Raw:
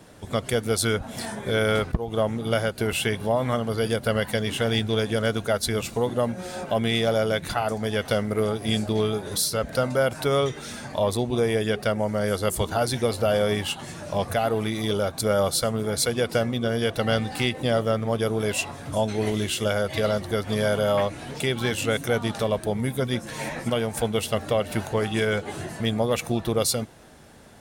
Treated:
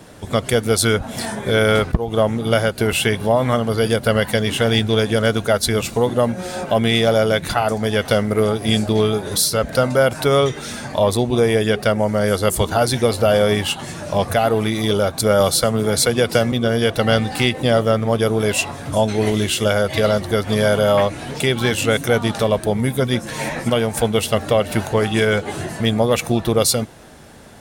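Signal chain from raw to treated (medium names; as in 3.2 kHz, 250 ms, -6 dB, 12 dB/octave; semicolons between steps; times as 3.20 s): 15.40–16.52 s: three bands compressed up and down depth 40%; trim +7 dB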